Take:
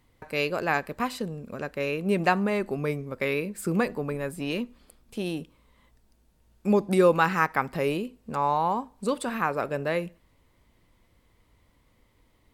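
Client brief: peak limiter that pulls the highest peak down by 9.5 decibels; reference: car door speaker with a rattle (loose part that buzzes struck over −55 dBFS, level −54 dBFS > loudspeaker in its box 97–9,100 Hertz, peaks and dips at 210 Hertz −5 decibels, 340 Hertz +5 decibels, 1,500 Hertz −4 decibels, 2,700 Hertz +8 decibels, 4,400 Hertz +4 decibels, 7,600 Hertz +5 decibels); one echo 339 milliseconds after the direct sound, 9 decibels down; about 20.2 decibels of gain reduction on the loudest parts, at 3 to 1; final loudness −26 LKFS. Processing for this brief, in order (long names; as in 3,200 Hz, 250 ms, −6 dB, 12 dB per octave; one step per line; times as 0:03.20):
downward compressor 3 to 1, threshold −44 dBFS
brickwall limiter −35 dBFS
single-tap delay 339 ms −9 dB
loose part that buzzes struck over −55 dBFS, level −54 dBFS
loudspeaker in its box 97–9,100 Hz, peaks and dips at 210 Hz −5 dB, 340 Hz +5 dB, 1,500 Hz −4 dB, 2,700 Hz +8 dB, 4,400 Hz +4 dB, 7,600 Hz +5 dB
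level +18.5 dB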